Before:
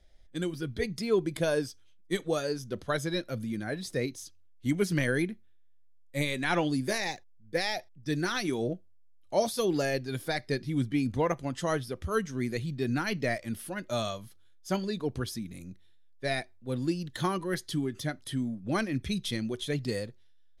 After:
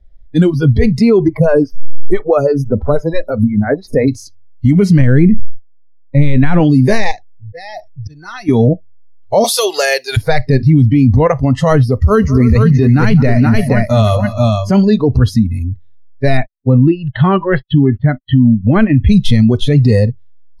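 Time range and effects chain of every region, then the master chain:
1.28–4.08 bell 4100 Hz -7.5 dB 1.4 oct + upward compressor, threshold -33 dBFS + photocell phaser 6 Hz
5.01–6.6 gate -51 dBFS, range -11 dB + tone controls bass +6 dB, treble -10 dB + sustainer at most 84 dB/s
7.11–8.49 hard clip -18 dBFS + auto swell 0.344 s + compressor 4:1, threshold -43 dBFS
9.44–10.17 HPF 390 Hz + tilt +4.5 dB/oct
11.87–14.7 modulation noise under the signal 30 dB + tapped delay 0.201/0.302/0.475 s -17/-16.5/-5 dB
16.37–19.09 Chebyshev low-pass 3300 Hz, order 4 + gate -47 dBFS, range -49 dB
whole clip: RIAA curve playback; spectral noise reduction 21 dB; maximiser +21 dB; gain -1 dB

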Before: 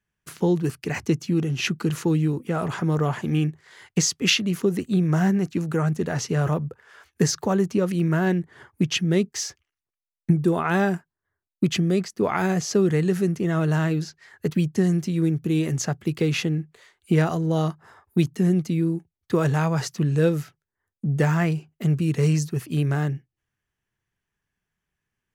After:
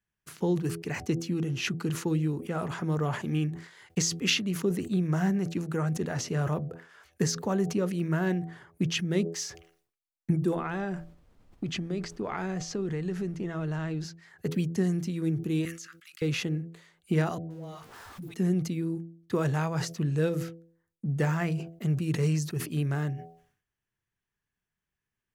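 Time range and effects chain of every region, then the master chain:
10.54–14.03 air absorption 62 m + compressor 4:1, threshold -22 dBFS + added noise brown -52 dBFS
15.65–16.22 steep high-pass 1200 Hz 72 dB/oct + compressor 2:1, threshold -42 dBFS
17.38–18.34 zero-crossing step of -35 dBFS + dispersion highs, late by 0.126 s, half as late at 390 Hz + compressor 2.5:1, threshold -38 dBFS
whole clip: de-hum 83.29 Hz, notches 9; sustainer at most 110 dB/s; gain -6 dB

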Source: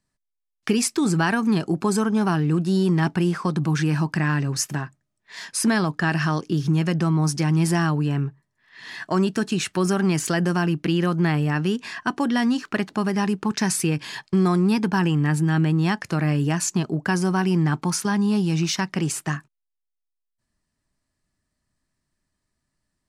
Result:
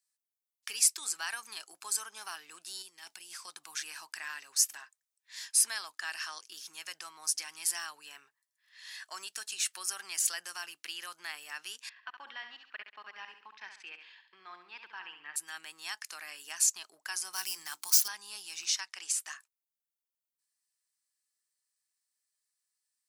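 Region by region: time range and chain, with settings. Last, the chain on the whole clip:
2.82–3.48 bell 1200 Hz -9 dB 1.7 oct + negative-ratio compressor -23 dBFS, ratio -0.5
11.89–15.36 LPF 3100 Hz 24 dB/oct + level quantiser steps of 23 dB + feedback echo 68 ms, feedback 39%, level -8 dB
17.33–18.08 median filter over 5 samples + tone controls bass +6 dB, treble +13 dB + notches 60/120/180/240/300/360 Hz
18.65–19.2 LPF 8800 Hz + low shelf 240 Hz -6.5 dB
whole clip: HPF 760 Hz 12 dB/oct; differentiator

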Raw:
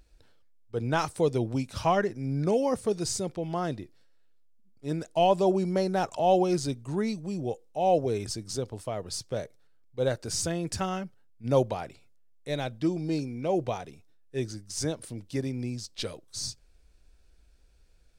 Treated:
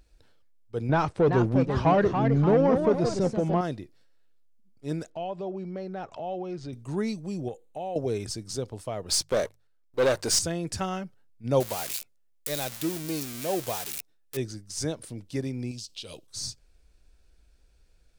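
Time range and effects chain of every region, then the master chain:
0.89–3.61 sample leveller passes 2 + echoes that change speed 0.389 s, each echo +2 st, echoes 2, each echo -6 dB + tape spacing loss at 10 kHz 27 dB
5.1–6.73 LPF 3100 Hz + notch 940 Hz, Q 20 + compressor 2:1, threshold -39 dBFS
7.48–7.96 Butterworth band-stop 5300 Hz, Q 3 + compressor 5:1, threshold -31 dBFS
9.09–10.39 sample leveller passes 3 + bell 120 Hz -11.5 dB 1.6 oct + notches 50/100/150 Hz
11.6–14.37 switching spikes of -21 dBFS + low shelf 350 Hz -5.5 dB
15.71–16.27 resonant high shelf 2300 Hz +6.5 dB, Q 3 + compressor 10:1, threshold -35 dBFS + short-mantissa float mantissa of 6-bit
whole clip: dry

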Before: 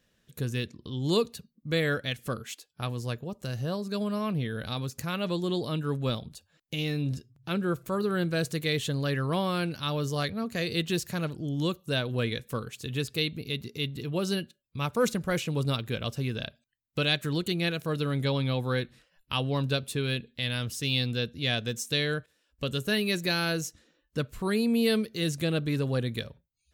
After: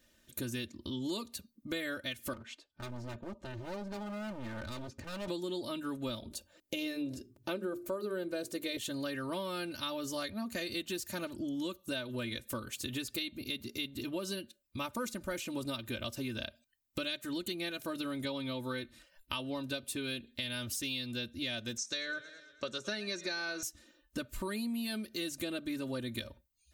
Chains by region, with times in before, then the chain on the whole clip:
2.33–5.28 tape spacing loss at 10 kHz 28 dB + hard clip -38 dBFS
6.22–8.77 bell 470 Hz +10.5 dB 1.2 oct + notches 50/100/150/200/250/300/350/400/450 Hz
21.77–23.63 speaker cabinet 190–6600 Hz, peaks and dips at 270 Hz -10 dB, 1400 Hz +5 dB, 3000 Hz -9 dB, 5800 Hz +7 dB + warbling echo 0.11 s, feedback 55%, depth 83 cents, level -20 dB
whole clip: high shelf 6600 Hz +7 dB; comb 3.3 ms, depth 92%; compressor 6:1, threshold -34 dBFS; gain -1 dB

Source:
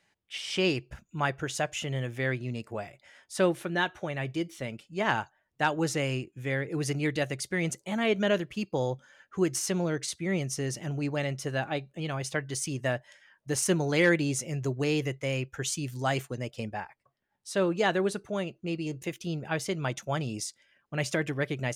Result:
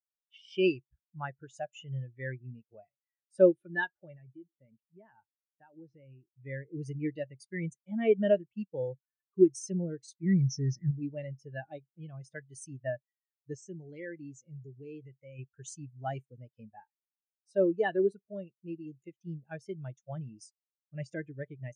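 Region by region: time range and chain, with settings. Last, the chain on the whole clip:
4.15–6.29 compressor 4:1, threshold -33 dBFS + air absorption 180 m
10.23–10.91 LPF 8500 Hz + sample leveller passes 2 + fixed phaser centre 2900 Hz, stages 6
13.55–15.39 compressor 2:1, threshold -34 dBFS + brick-wall FIR low-pass 8400 Hz
whole clip: high shelf 2500 Hz +8 dB; spectral expander 2.5:1

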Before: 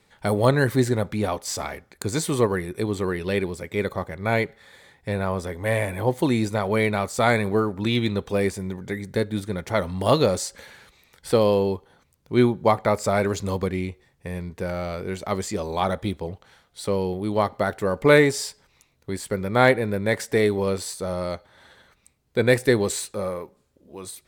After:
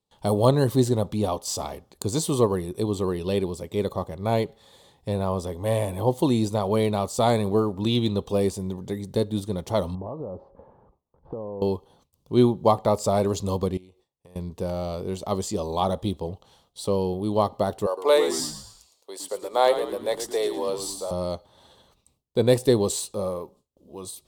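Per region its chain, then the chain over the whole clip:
9.95–11.62 LPF 1100 Hz 24 dB/oct + compressor 10:1, threshold -30 dBFS
13.77–14.36 tone controls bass -9 dB, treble -1 dB + compressor 3:1, threshold -51 dBFS
17.86–21.11 HPF 470 Hz 24 dB/oct + frequency-shifting echo 0.111 s, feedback 43%, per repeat -96 Hz, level -10 dB
whole clip: gate with hold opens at -48 dBFS; band shelf 1800 Hz -14 dB 1 oct

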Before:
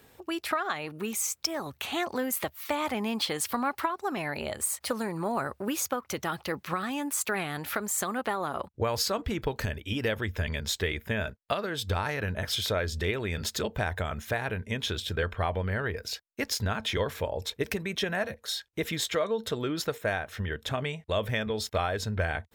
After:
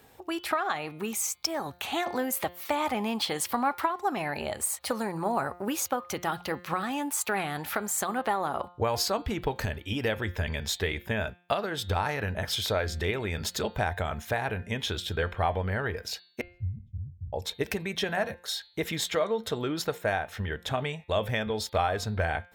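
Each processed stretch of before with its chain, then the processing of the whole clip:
16.41–17.33 inverse Chebyshev low-pass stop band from 560 Hz, stop band 70 dB + sustainer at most 130 dB/s
whole clip: bell 800 Hz +6 dB 0.45 oct; de-hum 176.4 Hz, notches 26

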